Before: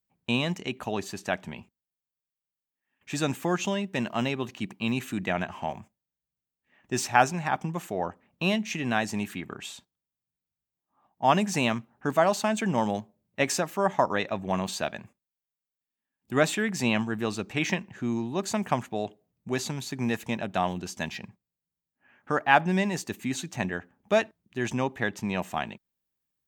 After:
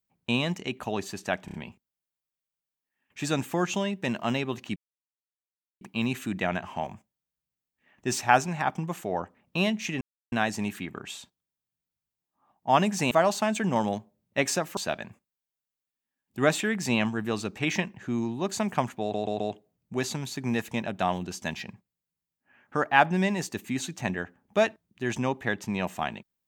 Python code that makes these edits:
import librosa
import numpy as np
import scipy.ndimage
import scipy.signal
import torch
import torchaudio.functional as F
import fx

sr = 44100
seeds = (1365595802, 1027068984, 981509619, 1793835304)

y = fx.edit(x, sr, fx.stutter(start_s=1.45, slice_s=0.03, count=4),
    fx.insert_silence(at_s=4.67, length_s=1.05),
    fx.insert_silence(at_s=8.87, length_s=0.31),
    fx.cut(start_s=11.66, length_s=0.47),
    fx.cut(start_s=13.79, length_s=0.92),
    fx.stutter(start_s=18.95, slice_s=0.13, count=4), tone=tone)